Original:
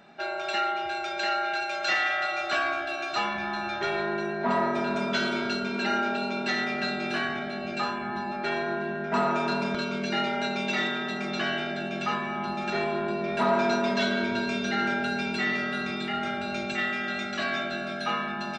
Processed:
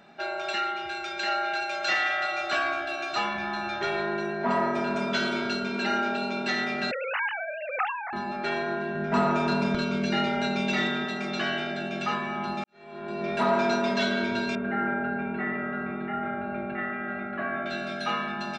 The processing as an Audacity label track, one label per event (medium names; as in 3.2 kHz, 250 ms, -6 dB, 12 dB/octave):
0.530000	1.270000	peaking EQ 660 Hz -7 dB
4.420000	5.070000	band-stop 3.8 kHz
6.910000	8.130000	formants replaced by sine waves
8.950000	11.050000	bass shelf 170 Hz +11.5 dB
12.640000	13.260000	fade in quadratic
14.550000	17.660000	low-pass 1.8 kHz 24 dB/octave